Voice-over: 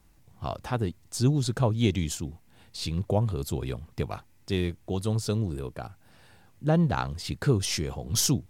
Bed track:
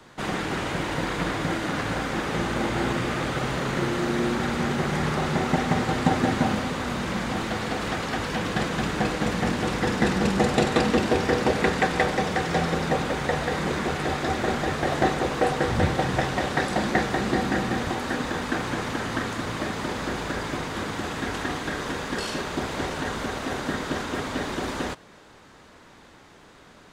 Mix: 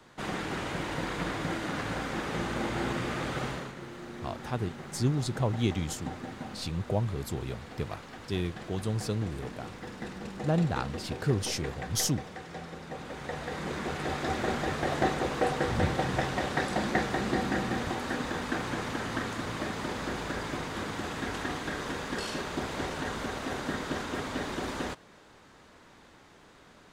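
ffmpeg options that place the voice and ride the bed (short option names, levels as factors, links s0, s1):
-filter_complex "[0:a]adelay=3800,volume=0.631[s0];[1:a]volume=2.11,afade=t=out:st=3.44:d=0.3:silence=0.266073,afade=t=in:st=12.87:d=1.46:silence=0.237137[s1];[s0][s1]amix=inputs=2:normalize=0"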